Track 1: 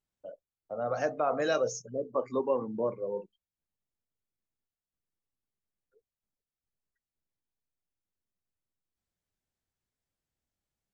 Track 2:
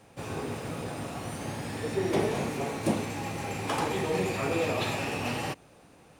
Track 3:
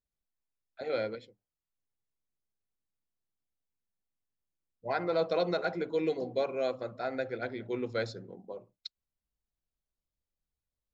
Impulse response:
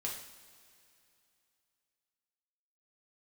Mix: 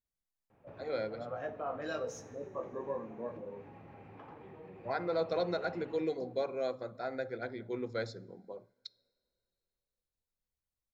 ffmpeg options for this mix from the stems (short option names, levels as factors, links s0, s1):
-filter_complex "[0:a]afwtdn=0.00447,flanger=delay=15.5:depth=6:speed=0.2,adelay=400,volume=0.355,asplit=2[s0][s1];[s1]volume=0.447[s2];[1:a]lowpass=2200,aemphasis=mode=reproduction:type=75fm,acompressor=threshold=0.01:ratio=3,adelay=500,volume=0.251[s3];[2:a]equalizer=f=2800:w=5.9:g=-14.5,volume=0.631,asplit=2[s4][s5];[s5]volume=0.106[s6];[3:a]atrim=start_sample=2205[s7];[s2][s6]amix=inputs=2:normalize=0[s8];[s8][s7]afir=irnorm=-1:irlink=0[s9];[s0][s3][s4][s9]amix=inputs=4:normalize=0"